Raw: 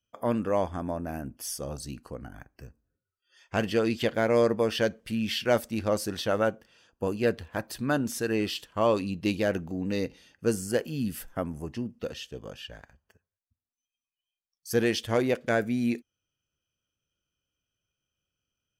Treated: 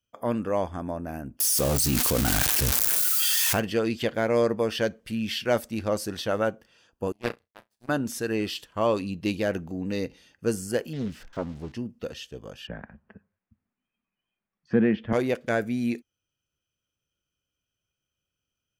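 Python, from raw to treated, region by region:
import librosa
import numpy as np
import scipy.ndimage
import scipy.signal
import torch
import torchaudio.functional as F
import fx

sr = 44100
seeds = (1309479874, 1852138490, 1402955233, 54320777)

y = fx.chain(x, sr, fx.crossing_spikes(level_db=-28.5),
    fx.env_flatten(amount_pct=100), at=(1.4, 3.6))
y = fx.chain(y, sr, fx.room_flutter(wall_m=5.7, rt60_s=0.43),
    fx.power_curve(exponent=3.0), at=(7.12, 7.89))
y = fx.chain(y, sr, fx.crossing_spikes(level_db=-30.5),
    fx.air_absorb(metres=170.0),
    fx.doppler_dist(depth_ms=0.58), at=(10.93, 11.72))
y = fx.chain(y, sr, fx.lowpass(hz=2300.0, slope=24),
    fx.peak_eq(hz=200.0, db=14.5, octaves=0.63),
    fx.band_squash(depth_pct=40), at=(12.67, 15.13))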